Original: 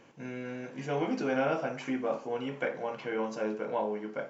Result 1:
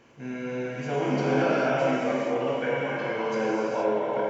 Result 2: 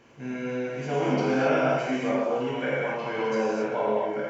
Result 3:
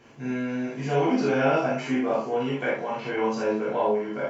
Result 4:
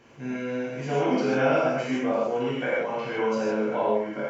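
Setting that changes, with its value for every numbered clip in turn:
reverb whose tail is shaped and stops, gate: 500, 300, 100, 180 milliseconds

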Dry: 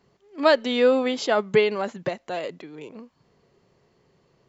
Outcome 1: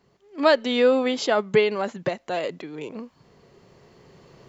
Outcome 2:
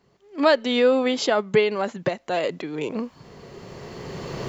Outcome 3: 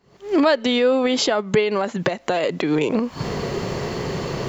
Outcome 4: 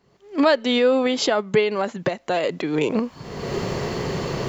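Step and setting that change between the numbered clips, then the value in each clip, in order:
camcorder AGC, rising by: 5, 13, 88, 36 dB per second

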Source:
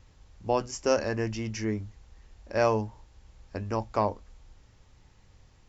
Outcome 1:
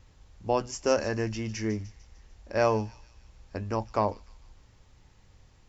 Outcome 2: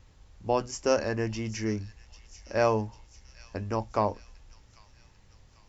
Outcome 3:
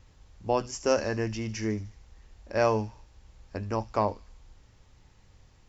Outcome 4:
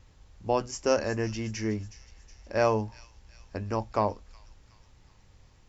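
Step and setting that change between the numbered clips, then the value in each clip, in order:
delay with a high-pass on its return, delay time: 150, 795, 75, 368 milliseconds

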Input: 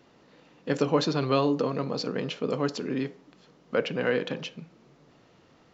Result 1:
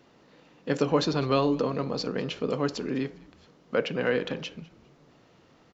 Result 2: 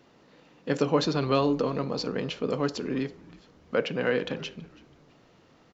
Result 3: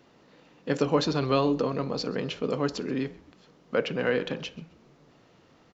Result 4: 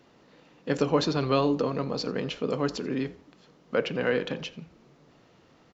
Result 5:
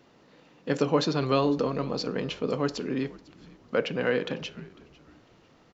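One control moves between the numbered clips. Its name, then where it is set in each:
echo with shifted repeats, delay time: 201, 328, 131, 86, 500 milliseconds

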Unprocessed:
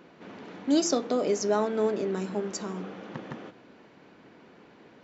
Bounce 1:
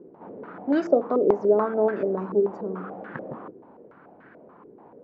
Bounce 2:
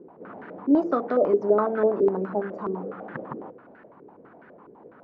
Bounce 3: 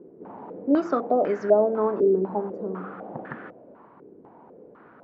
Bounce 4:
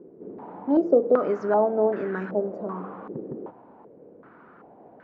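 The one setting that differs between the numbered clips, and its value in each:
low-pass on a step sequencer, speed: 6.9, 12, 4, 2.6 Hertz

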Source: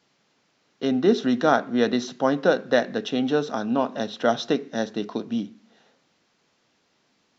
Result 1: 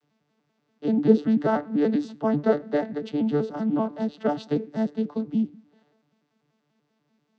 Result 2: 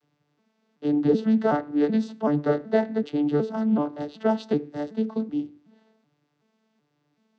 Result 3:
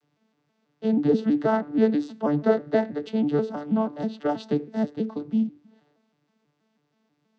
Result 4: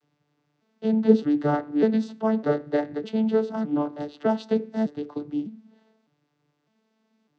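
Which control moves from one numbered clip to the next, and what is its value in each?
vocoder with an arpeggio as carrier, a note every: 97, 377, 161, 606 milliseconds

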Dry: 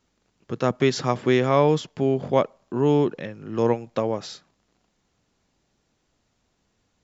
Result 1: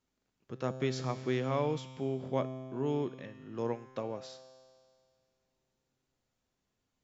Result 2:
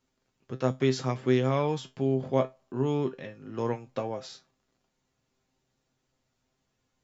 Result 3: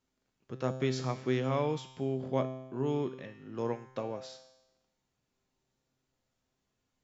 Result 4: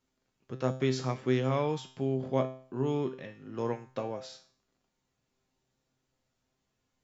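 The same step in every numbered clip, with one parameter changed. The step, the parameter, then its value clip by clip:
tuned comb filter, decay: 2.1, 0.19, 0.98, 0.47 seconds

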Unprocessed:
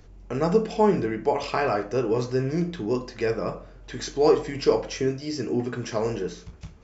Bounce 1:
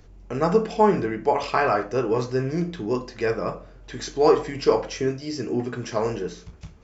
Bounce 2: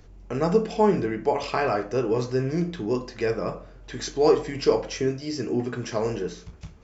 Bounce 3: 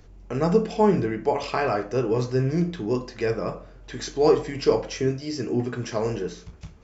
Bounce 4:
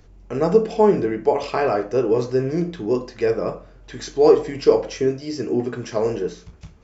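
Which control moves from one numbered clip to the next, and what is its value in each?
dynamic equaliser, frequency: 1,200, 6,500, 100, 450 Hertz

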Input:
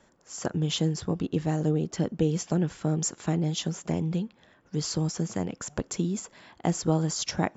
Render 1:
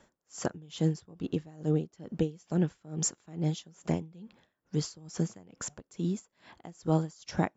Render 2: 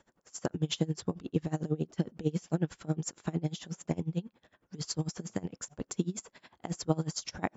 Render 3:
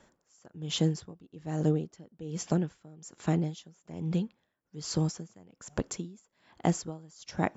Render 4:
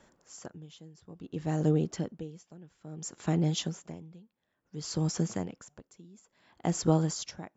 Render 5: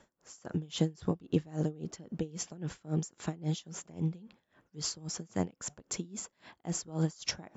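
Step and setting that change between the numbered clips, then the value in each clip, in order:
tremolo with a sine in dB, speed: 2.3, 11, 1.2, 0.58, 3.7 Hertz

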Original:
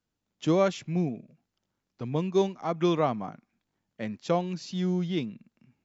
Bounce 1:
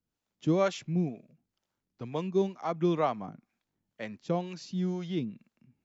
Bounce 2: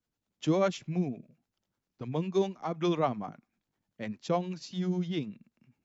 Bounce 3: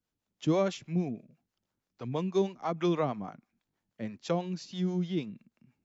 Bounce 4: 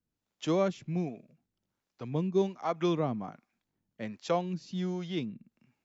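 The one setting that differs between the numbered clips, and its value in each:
two-band tremolo in antiphase, speed: 2.1, 10, 6.2, 1.3 Hertz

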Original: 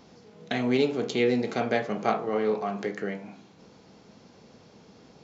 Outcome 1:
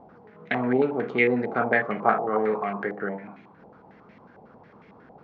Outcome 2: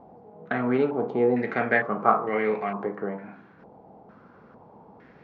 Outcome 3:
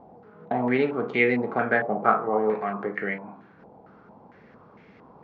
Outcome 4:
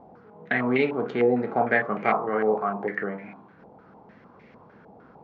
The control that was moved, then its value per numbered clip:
low-pass on a step sequencer, speed: 11, 2.2, 4.4, 6.6 Hertz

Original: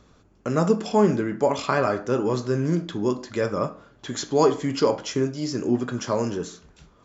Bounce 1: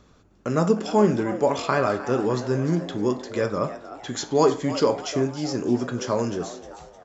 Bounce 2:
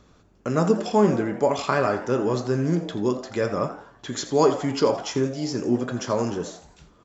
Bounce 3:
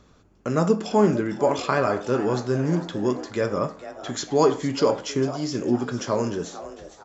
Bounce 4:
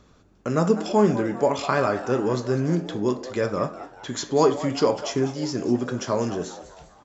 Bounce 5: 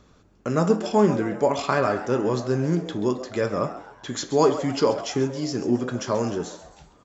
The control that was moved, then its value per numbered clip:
echo with shifted repeats, delay time: 307, 84, 453, 199, 133 milliseconds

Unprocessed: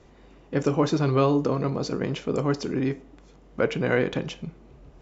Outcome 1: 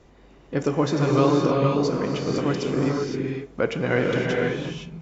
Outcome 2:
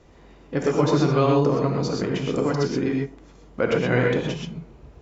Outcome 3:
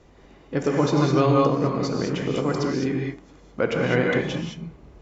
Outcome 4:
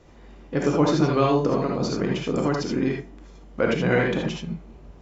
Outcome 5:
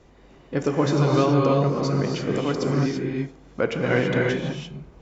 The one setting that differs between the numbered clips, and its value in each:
reverb whose tail is shaped and stops, gate: 540, 150, 230, 100, 360 milliseconds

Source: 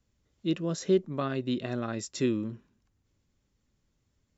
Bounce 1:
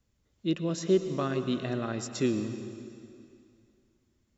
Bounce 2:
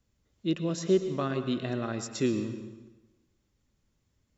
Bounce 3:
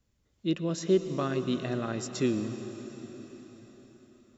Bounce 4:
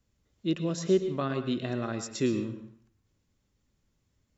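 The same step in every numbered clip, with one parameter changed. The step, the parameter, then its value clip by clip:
dense smooth reverb, RT60: 2.5, 1.1, 5.2, 0.52 seconds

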